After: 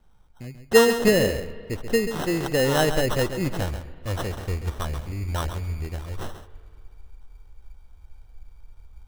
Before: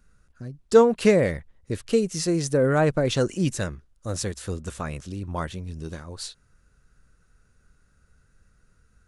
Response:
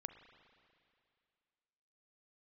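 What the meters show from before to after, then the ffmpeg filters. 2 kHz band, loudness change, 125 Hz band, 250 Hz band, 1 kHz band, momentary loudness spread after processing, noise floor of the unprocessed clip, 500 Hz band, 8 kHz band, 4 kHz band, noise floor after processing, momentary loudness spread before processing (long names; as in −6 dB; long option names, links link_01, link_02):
+5.0 dB, 0.0 dB, +0.5 dB, −1.5 dB, +1.0 dB, 16 LU, −64 dBFS, −0.5 dB, +1.0 dB, +4.5 dB, −52 dBFS, 19 LU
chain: -filter_complex "[0:a]asubboost=boost=9.5:cutoff=56,acrusher=samples=19:mix=1:aa=0.000001,asplit=2[link_01][link_02];[1:a]atrim=start_sample=2205,adelay=135[link_03];[link_02][link_03]afir=irnorm=-1:irlink=0,volume=-5dB[link_04];[link_01][link_04]amix=inputs=2:normalize=0"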